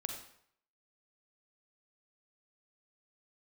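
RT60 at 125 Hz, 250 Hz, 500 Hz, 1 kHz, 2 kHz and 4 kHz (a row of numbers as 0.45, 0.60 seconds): 0.65, 0.55, 0.65, 0.65, 0.60, 0.55 seconds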